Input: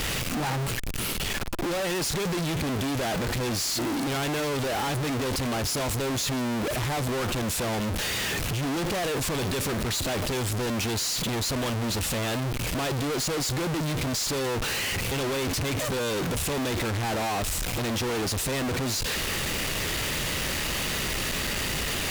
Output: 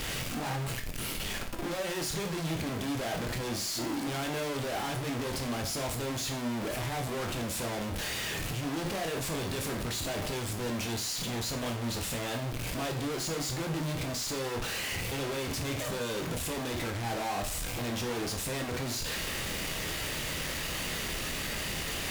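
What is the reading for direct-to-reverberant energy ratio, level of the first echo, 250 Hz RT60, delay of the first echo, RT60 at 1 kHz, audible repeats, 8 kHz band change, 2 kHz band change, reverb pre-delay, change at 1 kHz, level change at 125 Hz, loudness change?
3.0 dB, no echo, 0.40 s, no echo, 0.45 s, no echo, -6.0 dB, -5.5 dB, 16 ms, -5.5 dB, -6.0 dB, -6.0 dB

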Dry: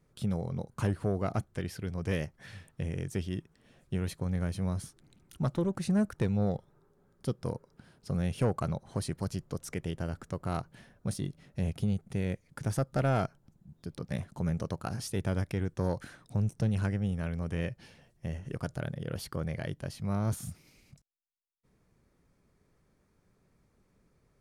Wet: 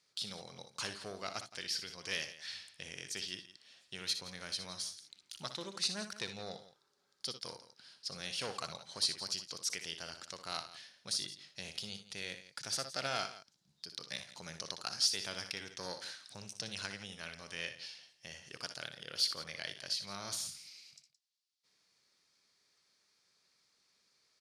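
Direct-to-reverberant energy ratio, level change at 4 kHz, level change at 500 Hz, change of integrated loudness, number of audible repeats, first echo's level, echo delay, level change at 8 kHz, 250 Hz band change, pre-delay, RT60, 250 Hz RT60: no reverb, +13.0 dB, -12.0 dB, -5.5 dB, 2, -10.0 dB, 61 ms, +6.5 dB, -19.5 dB, no reverb, no reverb, no reverb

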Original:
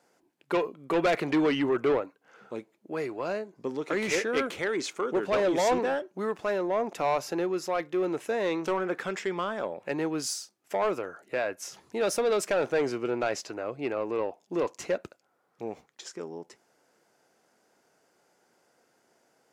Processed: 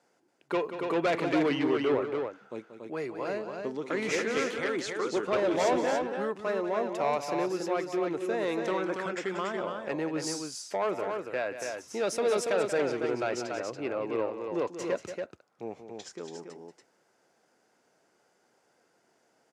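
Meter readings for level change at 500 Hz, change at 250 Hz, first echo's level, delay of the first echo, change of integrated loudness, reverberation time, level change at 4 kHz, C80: -1.0 dB, -1.0 dB, -10.5 dB, 183 ms, -1.0 dB, no reverb, -1.5 dB, no reverb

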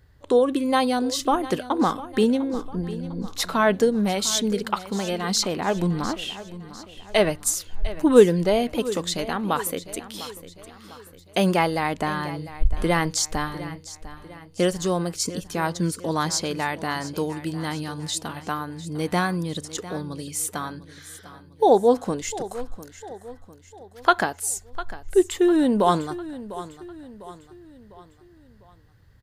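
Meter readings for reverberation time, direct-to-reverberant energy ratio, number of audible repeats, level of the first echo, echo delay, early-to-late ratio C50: no reverb, no reverb, 3, -15.5 dB, 701 ms, no reverb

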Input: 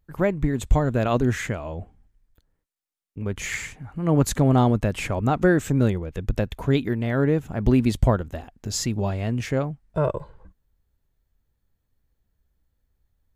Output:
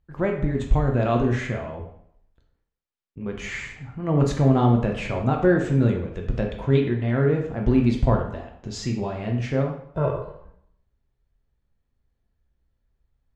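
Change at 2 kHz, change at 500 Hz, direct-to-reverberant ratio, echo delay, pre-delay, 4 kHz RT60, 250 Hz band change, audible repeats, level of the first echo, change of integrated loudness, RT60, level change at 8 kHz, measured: -1.5 dB, +0.5 dB, 1.0 dB, no echo, 5 ms, 0.55 s, 0.0 dB, no echo, no echo, 0.0 dB, 0.70 s, -10.5 dB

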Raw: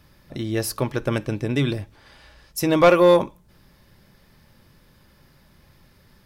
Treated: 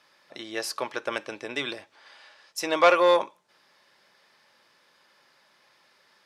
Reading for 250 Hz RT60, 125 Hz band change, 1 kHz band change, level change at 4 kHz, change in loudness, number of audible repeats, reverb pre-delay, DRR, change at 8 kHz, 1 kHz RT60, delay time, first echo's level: no reverb, under -25 dB, -1.0 dB, -0.5 dB, -4.5 dB, no echo, no reverb, no reverb, -4.5 dB, no reverb, no echo, no echo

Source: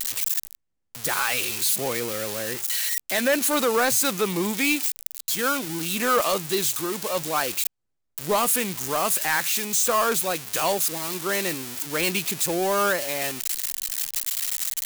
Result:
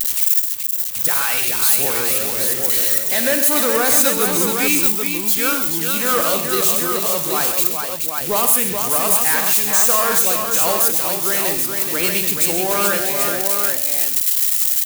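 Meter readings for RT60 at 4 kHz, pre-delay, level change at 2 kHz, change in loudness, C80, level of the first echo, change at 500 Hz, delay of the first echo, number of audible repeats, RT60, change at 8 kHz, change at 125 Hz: no reverb, no reverb, +4.0 dB, +8.5 dB, no reverb, -11.0 dB, +3.5 dB, 54 ms, 6, no reverb, +8.0 dB, +3.5 dB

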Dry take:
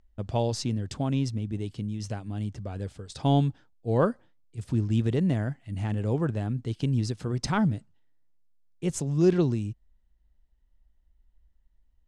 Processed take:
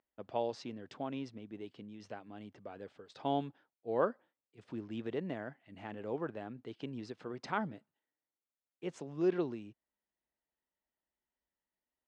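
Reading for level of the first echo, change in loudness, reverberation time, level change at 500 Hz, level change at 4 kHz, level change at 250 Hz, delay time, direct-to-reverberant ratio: no echo, -11.5 dB, no reverb, -7.0 dB, -12.5 dB, -12.5 dB, no echo, no reverb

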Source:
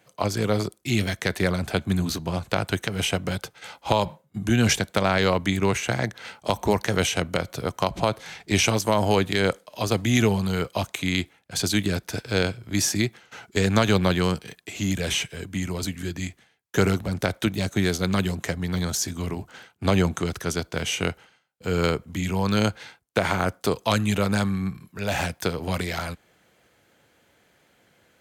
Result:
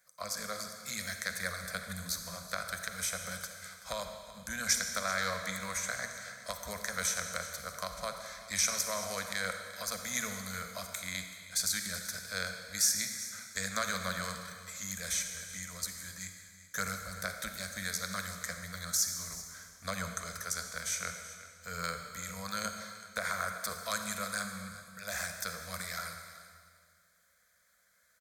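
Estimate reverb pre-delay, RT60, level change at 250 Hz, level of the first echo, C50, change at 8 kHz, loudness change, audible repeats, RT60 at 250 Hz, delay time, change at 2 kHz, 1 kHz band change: 39 ms, 1.9 s, -21.5 dB, -17.0 dB, 5.5 dB, -1.5 dB, -10.5 dB, 1, 2.1 s, 381 ms, -7.5 dB, -11.0 dB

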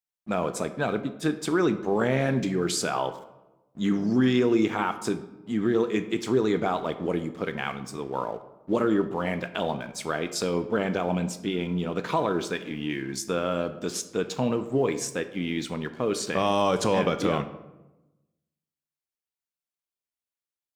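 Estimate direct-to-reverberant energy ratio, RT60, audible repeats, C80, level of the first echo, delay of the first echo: 10.0 dB, 1.0 s, no echo, 15.0 dB, no echo, no echo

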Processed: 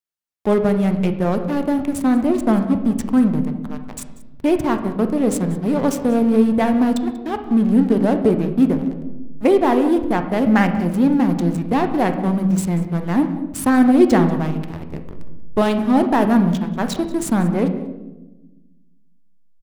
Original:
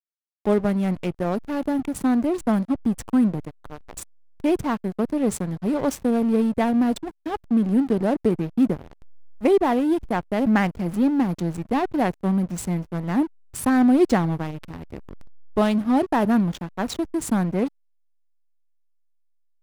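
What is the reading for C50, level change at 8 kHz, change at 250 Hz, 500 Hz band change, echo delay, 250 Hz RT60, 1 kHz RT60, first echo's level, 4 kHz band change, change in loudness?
9.0 dB, +3.5 dB, +5.0 dB, +5.0 dB, 188 ms, 1.8 s, 0.90 s, -18.5 dB, +4.0 dB, +4.5 dB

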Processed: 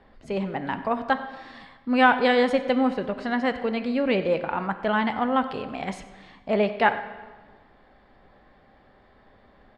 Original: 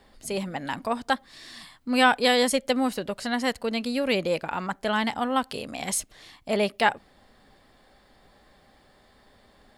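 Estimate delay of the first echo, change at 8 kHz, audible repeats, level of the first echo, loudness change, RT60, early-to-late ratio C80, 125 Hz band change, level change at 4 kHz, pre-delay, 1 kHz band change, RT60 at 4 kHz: 96 ms, under -20 dB, 1, -19.0 dB, +1.5 dB, 1.4 s, 12.5 dB, +2.5 dB, -6.0 dB, 8 ms, +2.0 dB, 1.1 s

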